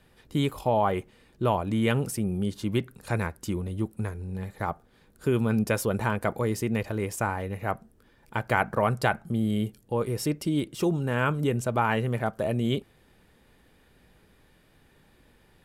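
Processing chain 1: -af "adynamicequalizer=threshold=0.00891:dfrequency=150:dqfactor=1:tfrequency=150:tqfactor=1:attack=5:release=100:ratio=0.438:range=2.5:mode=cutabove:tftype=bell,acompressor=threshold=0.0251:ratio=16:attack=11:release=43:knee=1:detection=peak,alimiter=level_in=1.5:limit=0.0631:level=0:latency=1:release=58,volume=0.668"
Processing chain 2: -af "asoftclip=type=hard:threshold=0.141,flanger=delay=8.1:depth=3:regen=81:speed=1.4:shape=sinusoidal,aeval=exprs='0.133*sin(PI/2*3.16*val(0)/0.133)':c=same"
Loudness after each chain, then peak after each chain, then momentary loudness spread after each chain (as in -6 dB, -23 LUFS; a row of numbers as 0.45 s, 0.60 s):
-37.5 LUFS, -24.0 LUFS; -27.5 dBFS, -17.5 dBFS; 6 LU, 6 LU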